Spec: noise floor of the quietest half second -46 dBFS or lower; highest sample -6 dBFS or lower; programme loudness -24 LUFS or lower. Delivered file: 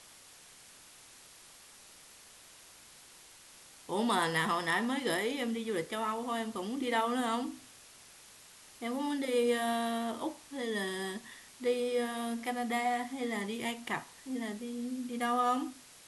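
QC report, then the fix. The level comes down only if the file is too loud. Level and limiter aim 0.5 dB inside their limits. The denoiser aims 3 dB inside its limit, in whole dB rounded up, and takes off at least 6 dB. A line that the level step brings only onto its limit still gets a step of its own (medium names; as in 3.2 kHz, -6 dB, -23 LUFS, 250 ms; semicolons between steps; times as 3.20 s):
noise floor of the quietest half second -56 dBFS: pass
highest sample -16.5 dBFS: pass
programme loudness -34.0 LUFS: pass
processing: none needed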